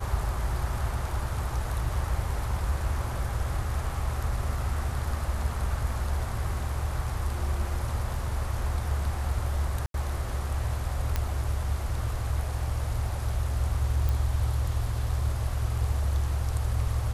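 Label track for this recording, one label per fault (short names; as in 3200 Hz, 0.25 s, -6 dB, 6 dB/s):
9.860000	9.940000	gap 82 ms
11.160000	11.160000	pop -13 dBFS
14.090000	14.090000	pop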